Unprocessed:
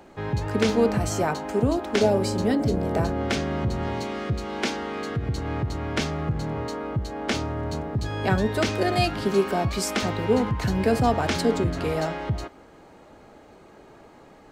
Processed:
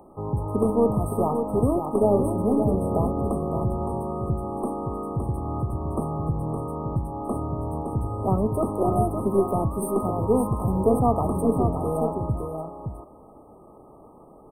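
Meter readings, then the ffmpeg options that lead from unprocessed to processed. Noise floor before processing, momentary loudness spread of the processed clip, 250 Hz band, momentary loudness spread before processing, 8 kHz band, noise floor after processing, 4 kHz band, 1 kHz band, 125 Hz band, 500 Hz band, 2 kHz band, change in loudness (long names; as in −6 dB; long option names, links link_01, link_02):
−50 dBFS, 8 LU, +1.0 dB, 8 LU, −7.5 dB, −49 dBFS, below −40 dB, +0.5 dB, +1.0 dB, +1.0 dB, below −40 dB, 0.0 dB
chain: -af "aeval=exprs='0.422*(cos(1*acos(clip(val(0)/0.422,-1,1)))-cos(1*PI/2))+0.0133*(cos(6*acos(clip(val(0)/0.422,-1,1)))-cos(6*PI/2))':channel_layout=same,aecho=1:1:565:0.473,afftfilt=real='re*(1-between(b*sr/4096,1300,8300))':imag='im*(1-between(b*sr/4096,1300,8300))':win_size=4096:overlap=0.75"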